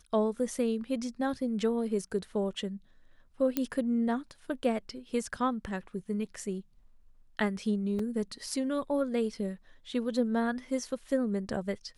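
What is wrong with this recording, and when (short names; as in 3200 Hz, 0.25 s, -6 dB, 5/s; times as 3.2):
3.57 pop -14 dBFS
7.99 gap 3.7 ms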